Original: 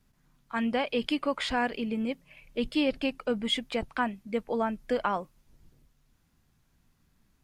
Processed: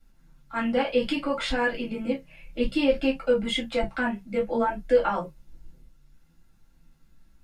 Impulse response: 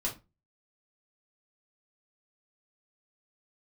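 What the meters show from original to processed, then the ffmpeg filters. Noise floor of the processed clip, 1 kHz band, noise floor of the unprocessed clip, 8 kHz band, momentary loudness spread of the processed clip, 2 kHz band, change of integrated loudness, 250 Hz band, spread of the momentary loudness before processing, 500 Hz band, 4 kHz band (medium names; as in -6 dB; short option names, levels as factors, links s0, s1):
-60 dBFS, +2.0 dB, -69 dBFS, +1.5 dB, 8 LU, +3.5 dB, +4.0 dB, +2.5 dB, 7 LU, +6.5 dB, +0.5 dB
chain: -filter_complex "[0:a]flanger=delay=9.9:depth=7.5:regen=52:speed=0.61:shape=triangular[s0];[1:a]atrim=start_sample=2205,afade=t=out:st=0.14:d=0.01,atrim=end_sample=6615,asetrate=61740,aresample=44100[s1];[s0][s1]afir=irnorm=-1:irlink=0,volume=2"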